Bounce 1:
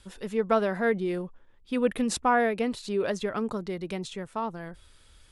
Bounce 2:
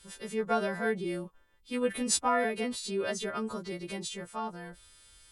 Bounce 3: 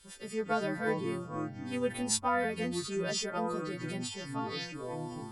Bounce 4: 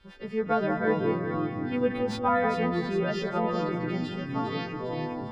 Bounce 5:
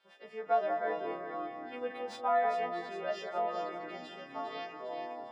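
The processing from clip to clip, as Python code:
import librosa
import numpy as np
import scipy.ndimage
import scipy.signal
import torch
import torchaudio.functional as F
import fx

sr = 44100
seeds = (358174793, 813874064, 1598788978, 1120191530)

y1 = fx.freq_snap(x, sr, grid_st=2)
y1 = y1 * 10.0 ** (-4.5 / 20.0)
y2 = fx.echo_pitch(y1, sr, ms=158, semitones=-6, count=2, db_per_echo=-6.0)
y2 = y2 * 10.0 ** (-2.5 / 20.0)
y3 = scipy.signal.medfilt(y2, 3)
y3 = fx.air_absorb(y3, sr, metres=330.0)
y3 = fx.echo_split(y3, sr, split_hz=1500.0, low_ms=190, high_ms=404, feedback_pct=52, wet_db=-6.5)
y3 = y3 * 10.0 ** (6.5 / 20.0)
y4 = scipy.signal.sosfilt(scipy.signal.butter(2, 510.0, 'highpass', fs=sr, output='sos'), y3)
y4 = fx.peak_eq(y4, sr, hz=680.0, db=10.5, octaves=0.38)
y4 = fx.doubler(y4, sr, ms=29.0, db=-10.5)
y4 = y4 * 10.0 ** (-8.5 / 20.0)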